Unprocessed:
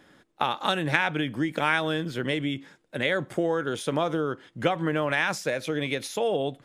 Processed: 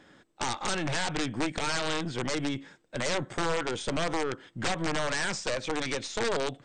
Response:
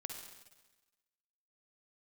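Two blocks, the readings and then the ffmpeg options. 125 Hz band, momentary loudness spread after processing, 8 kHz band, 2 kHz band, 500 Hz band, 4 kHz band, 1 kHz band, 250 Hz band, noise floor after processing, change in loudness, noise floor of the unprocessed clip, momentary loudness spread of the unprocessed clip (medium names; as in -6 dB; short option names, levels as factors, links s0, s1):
-4.0 dB, 4 LU, +6.0 dB, -5.0 dB, -4.5 dB, -0.5 dB, -4.0 dB, -4.5 dB, -65 dBFS, -4.0 dB, -65 dBFS, 5 LU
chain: -af "aeval=exprs='(mod(8.91*val(0)+1,2)-1)/8.91':c=same,aeval=exprs='(tanh(22.4*val(0)+0.5)-tanh(0.5))/22.4':c=same,volume=1.26" -ar 32000 -c:a mp2 -b:a 96k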